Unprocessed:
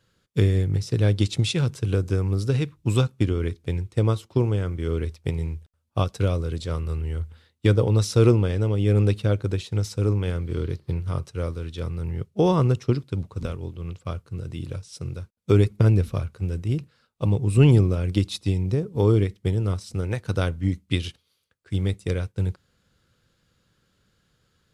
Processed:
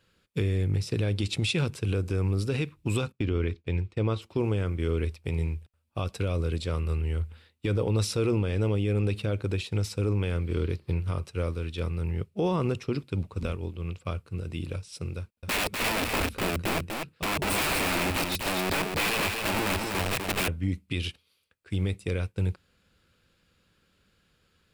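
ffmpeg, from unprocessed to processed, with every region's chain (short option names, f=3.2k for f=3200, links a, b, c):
-filter_complex "[0:a]asettb=1/sr,asplit=3[a][b][c];[a]atrim=end=3.124[d];[b]atrim=start=3.12:end=4.22,asetpts=PTS-STARTPTS,afade=t=in:d=0.004:c=qsin,afade=t=out:st=1.096:d=0.004:c=qsin,lowpass=4.9k,agate=range=-33dB:threshold=-47dB:ratio=3:release=100:detection=peak[e];[c]atrim=start=4.216[f];[d][e]acrossfade=d=0.004:c1=hsin:c2=qsin[g];[g][f]acrossfade=d=0.004:c1=qsin:c2=hsin,asettb=1/sr,asplit=3[h][i][j];[h]atrim=end=15.184[k];[i]atrim=start=15.18:end=20.48,asetpts=PTS-STARTPTS,afade=t=in:d=0.004:c=qsin,afade=t=out:st=5.296:d=0.004:c=qsin,aeval=exprs='(mod(15*val(0)+1,2)-1)/15':c=same,aecho=1:1:247:0.596,atrim=end_sample=233730[l];[j]atrim=start=20.476[m];[k][l]acrossfade=d=0.004:c1=hsin:c2=qsin[n];[n][m]acrossfade=d=0.004:c1=qsin:c2=hsin,equalizer=f=125:t=o:w=0.33:g=-9,equalizer=f=2.5k:t=o:w=0.33:g=7,equalizer=f=6.3k:t=o:w=0.33:g=-5,alimiter=limit=-17.5dB:level=0:latency=1:release=43"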